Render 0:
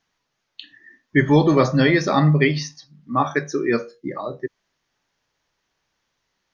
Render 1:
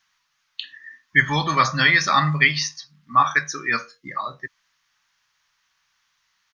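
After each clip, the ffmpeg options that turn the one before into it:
-af "firequalizer=gain_entry='entry(150,0);entry(370,-11);entry(1100,13)':delay=0.05:min_phase=1,volume=-6.5dB"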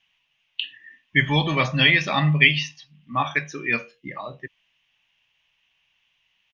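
-af "firequalizer=gain_entry='entry(660,0);entry(1300,-16);entry(2800,8);entry(4300,-15)':delay=0.05:min_phase=1,volume=3dB"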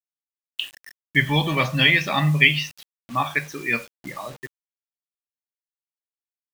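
-af "acrusher=bits=6:mix=0:aa=0.000001"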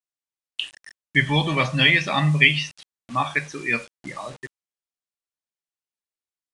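-af "aresample=22050,aresample=44100"

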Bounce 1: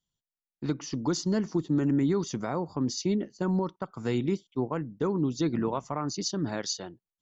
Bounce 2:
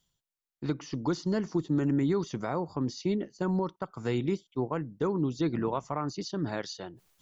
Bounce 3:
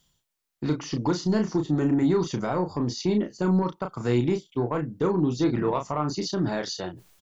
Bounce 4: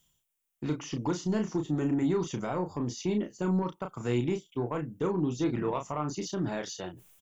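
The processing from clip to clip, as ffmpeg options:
-filter_complex "[0:a]areverse,acompressor=mode=upward:threshold=-48dB:ratio=2.5,areverse,equalizer=f=230:w=2.1:g=-3.5,acrossover=split=3900[a][b];[b]acompressor=threshold=-50dB:ratio=4:attack=1:release=60[c];[a][c]amix=inputs=2:normalize=0"
-filter_complex "[0:a]asplit=2[a][b];[b]alimiter=level_in=5dB:limit=-24dB:level=0:latency=1:release=221,volume=-5dB,volume=-2dB[c];[a][c]amix=inputs=2:normalize=0,asoftclip=type=tanh:threshold=-17.5dB,asplit=2[d][e];[e]adelay=33,volume=-6dB[f];[d][f]amix=inputs=2:normalize=0,volume=3dB"
-af "aexciter=amount=1.4:drive=2.8:freq=2.4k,volume=-5.5dB"

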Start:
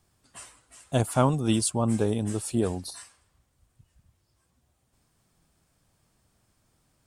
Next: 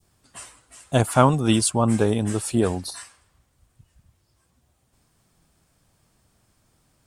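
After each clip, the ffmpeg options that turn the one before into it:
-af "adynamicequalizer=threshold=0.00708:dfrequency=1600:dqfactor=0.72:tfrequency=1600:tqfactor=0.72:attack=5:release=100:ratio=0.375:range=2.5:mode=boostabove:tftype=bell,volume=4.5dB"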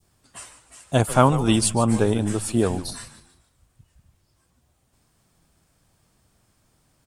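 -filter_complex "[0:a]asplit=5[a][b][c][d][e];[b]adelay=147,afreqshift=-110,volume=-14dB[f];[c]adelay=294,afreqshift=-220,volume=-22.2dB[g];[d]adelay=441,afreqshift=-330,volume=-30.4dB[h];[e]adelay=588,afreqshift=-440,volume=-38.5dB[i];[a][f][g][h][i]amix=inputs=5:normalize=0"

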